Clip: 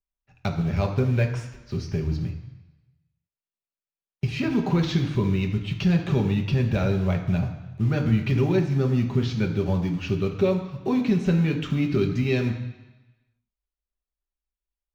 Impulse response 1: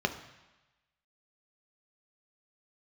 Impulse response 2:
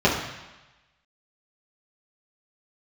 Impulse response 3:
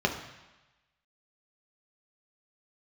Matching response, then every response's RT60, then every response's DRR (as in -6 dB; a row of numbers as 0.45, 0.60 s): 3; 1.1, 1.1, 1.1 s; 6.0, -7.5, 1.5 dB